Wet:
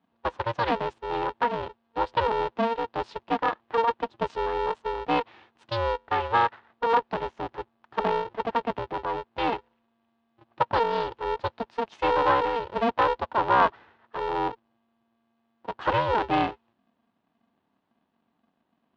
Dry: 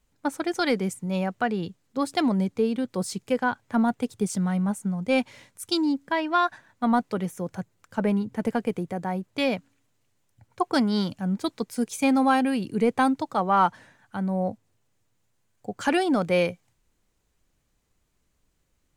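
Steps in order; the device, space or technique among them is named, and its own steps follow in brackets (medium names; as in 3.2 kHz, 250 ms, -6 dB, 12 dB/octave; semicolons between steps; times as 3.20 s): ring modulator pedal into a guitar cabinet (polarity switched at an audio rate 230 Hz; cabinet simulation 92–3500 Hz, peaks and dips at 140 Hz -4 dB, 920 Hz +9 dB, 2.2 kHz -5 dB); trim -2.5 dB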